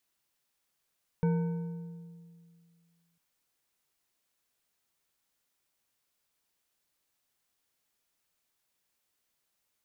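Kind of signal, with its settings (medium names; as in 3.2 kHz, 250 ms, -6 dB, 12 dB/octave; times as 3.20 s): metal hit bar, length 1.95 s, lowest mode 169 Hz, decay 2.25 s, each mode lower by 8 dB, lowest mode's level -23 dB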